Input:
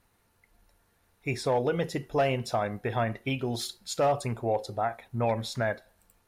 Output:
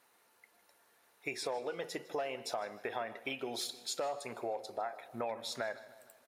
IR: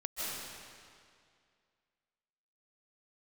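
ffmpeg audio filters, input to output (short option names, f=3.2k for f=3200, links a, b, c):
-filter_complex "[0:a]highpass=420,acompressor=threshold=-39dB:ratio=4,asplit=2[a][b];[b]adelay=155,lowpass=f=4.3k:p=1,volume=-17dB,asplit=2[c][d];[d]adelay=155,lowpass=f=4.3k:p=1,volume=0.53,asplit=2[e][f];[f]adelay=155,lowpass=f=4.3k:p=1,volume=0.53,asplit=2[g][h];[h]adelay=155,lowpass=f=4.3k:p=1,volume=0.53,asplit=2[i][j];[j]adelay=155,lowpass=f=4.3k:p=1,volume=0.53[k];[a][c][e][g][i][k]amix=inputs=6:normalize=0,asplit=2[l][m];[1:a]atrim=start_sample=2205,asetrate=57330,aresample=44100[n];[m][n]afir=irnorm=-1:irlink=0,volume=-21.5dB[o];[l][o]amix=inputs=2:normalize=0,volume=2dB"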